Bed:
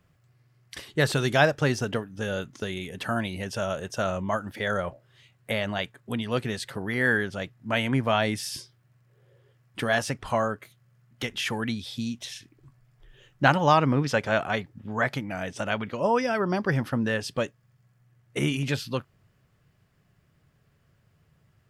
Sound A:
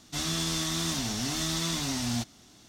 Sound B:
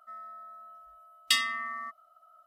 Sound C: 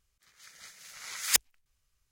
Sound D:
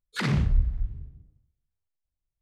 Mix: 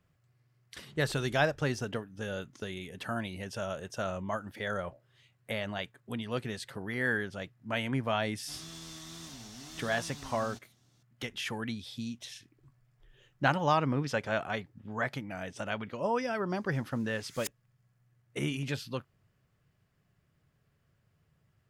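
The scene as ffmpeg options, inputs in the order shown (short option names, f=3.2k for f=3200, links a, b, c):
-filter_complex "[0:a]volume=-7dB[a];[4:a]acompressor=threshold=-38dB:ratio=6:attack=3.2:release=140:knee=1:detection=peak,atrim=end=2.41,asetpts=PTS-STARTPTS,volume=-16dB,afade=t=in:d=0.004:c=hsin,afade=t=out:st=2.406:d=0.004:c=hsin,adelay=590[b];[1:a]atrim=end=2.68,asetpts=PTS-STARTPTS,volume=-16dB,afade=t=in:d=0.004:c=hsin,afade=t=out:st=2.676:d=0.004:c=hsin,adelay=8350[c];[3:a]atrim=end=2.11,asetpts=PTS-STARTPTS,volume=-16.5dB,afade=t=in:d=0.004:c=hsin,afade=t=out:st=2.106:d=0.004:c=hsin,adelay=16110[d];[a][b][c][d]amix=inputs=4:normalize=0"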